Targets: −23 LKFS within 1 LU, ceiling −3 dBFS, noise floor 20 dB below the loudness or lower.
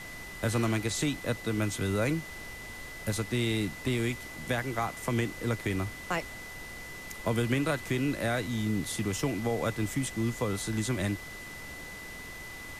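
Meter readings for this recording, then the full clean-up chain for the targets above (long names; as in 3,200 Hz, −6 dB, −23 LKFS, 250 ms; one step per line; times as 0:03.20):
interfering tone 2,000 Hz; level of the tone −43 dBFS; background noise floor −43 dBFS; target noise floor −52 dBFS; integrated loudness −32.0 LKFS; sample peak −15.0 dBFS; target loudness −23.0 LKFS
→ notch filter 2,000 Hz, Q 30
noise reduction from a noise print 9 dB
level +9 dB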